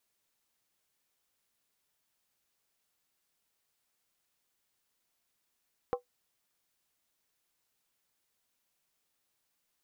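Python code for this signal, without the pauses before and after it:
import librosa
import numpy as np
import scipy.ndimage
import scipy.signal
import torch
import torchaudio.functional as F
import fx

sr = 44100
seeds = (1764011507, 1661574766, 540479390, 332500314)

y = fx.strike_skin(sr, length_s=0.63, level_db=-24.0, hz=492.0, decay_s=0.12, tilt_db=5.0, modes=5)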